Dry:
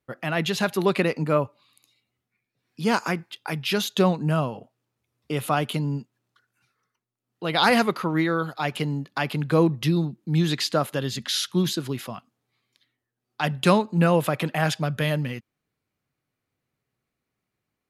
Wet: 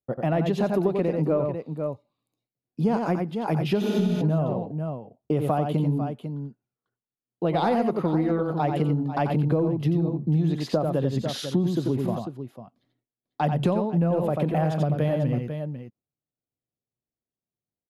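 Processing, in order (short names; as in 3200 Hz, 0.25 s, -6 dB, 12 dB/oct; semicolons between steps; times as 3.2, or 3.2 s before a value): dynamic EQ 2300 Hz, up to +4 dB, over -40 dBFS, Q 0.95; in parallel at -10.5 dB: soft clip -17 dBFS, distortion -11 dB; on the sum: gate with hold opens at -50 dBFS; EQ curve 710 Hz 0 dB, 1400 Hz -15 dB, 2100 Hz -19 dB; on a send: tapped delay 89/496 ms -5.5/-14 dB; on the sum: spectral repair 3.85–4.18, 210–12000 Hz before; compressor 10:1, threshold -25 dBFS, peak gain reduction 13 dB; gain +5.5 dB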